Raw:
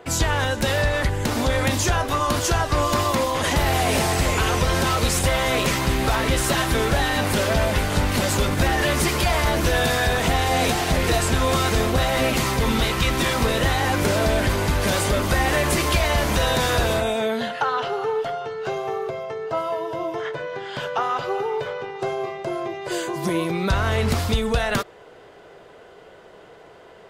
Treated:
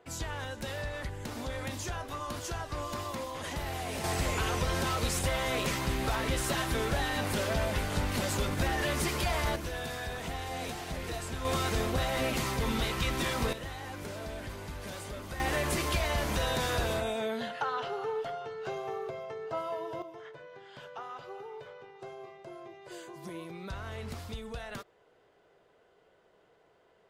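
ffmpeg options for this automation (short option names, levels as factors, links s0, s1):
-af "asetnsamples=n=441:p=0,asendcmd='4.04 volume volume -10dB;9.56 volume volume -17dB;11.45 volume volume -10dB;13.53 volume volume -20dB;15.4 volume volume -10dB;20.02 volume volume -19dB',volume=0.158"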